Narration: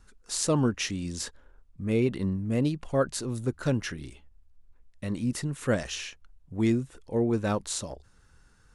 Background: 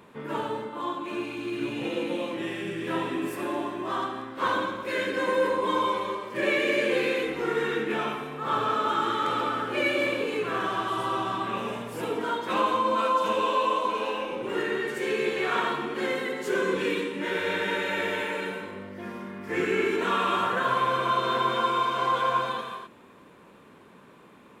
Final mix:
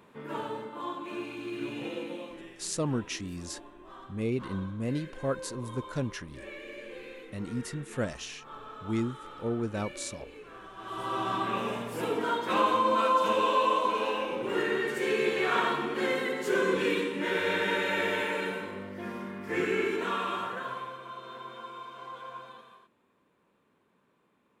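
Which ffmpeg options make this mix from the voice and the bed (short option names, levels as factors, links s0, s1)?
-filter_complex "[0:a]adelay=2300,volume=0.531[s0];[1:a]volume=4.73,afade=t=out:st=1.77:d=0.81:silence=0.199526,afade=t=in:st=10.76:d=0.59:silence=0.11885,afade=t=out:st=19.23:d=1.75:silence=0.133352[s1];[s0][s1]amix=inputs=2:normalize=0"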